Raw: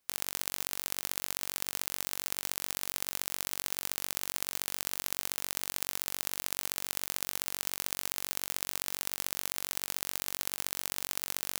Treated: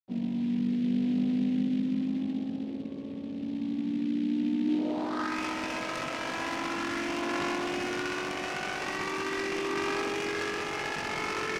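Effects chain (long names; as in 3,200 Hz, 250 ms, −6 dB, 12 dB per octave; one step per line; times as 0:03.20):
vocoder with a gliding carrier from A#3, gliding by +11 semitones
spectral peaks only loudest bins 64
in parallel at −2.5 dB: brickwall limiter −37.5 dBFS, peak gain reduction 10 dB
on the sum: comparator with hysteresis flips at −47 dBFS
bit reduction 11 bits
high-pass filter 180 Hz 12 dB per octave
double-tracking delay 20 ms −4 dB
pitch-shifted copies added −7 semitones −16 dB, −4 semitones −6 dB
low-pass filter sweep 250 Hz → 2,600 Hz, 0:04.64–0:05.41
short delay modulated by noise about 2,600 Hz, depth 0.031 ms
level +4 dB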